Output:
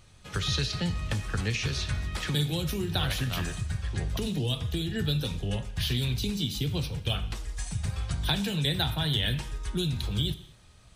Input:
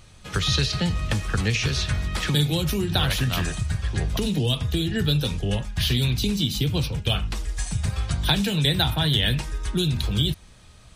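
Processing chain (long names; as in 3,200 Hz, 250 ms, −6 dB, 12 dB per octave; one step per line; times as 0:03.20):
reverb whose tail is shaped and stops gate 280 ms falling, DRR 12 dB
level −6.5 dB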